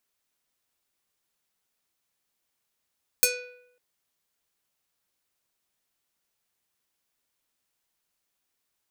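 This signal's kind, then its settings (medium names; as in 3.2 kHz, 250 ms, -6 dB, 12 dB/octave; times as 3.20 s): plucked string B4, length 0.55 s, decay 0.80 s, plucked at 0.5, medium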